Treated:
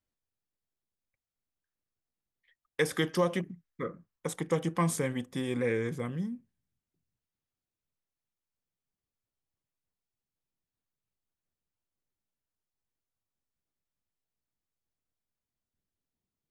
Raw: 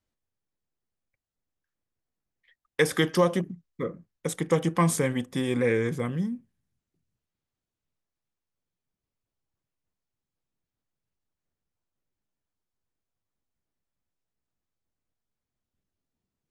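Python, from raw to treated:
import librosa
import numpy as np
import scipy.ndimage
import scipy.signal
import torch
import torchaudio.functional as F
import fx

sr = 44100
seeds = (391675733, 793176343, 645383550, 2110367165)

y = fx.peak_eq(x, sr, hz=fx.line((3.3, 2500.0), (4.41, 860.0)), db=8.5, octaves=0.85, at=(3.3, 4.41), fade=0.02)
y = y * librosa.db_to_amplitude(-5.5)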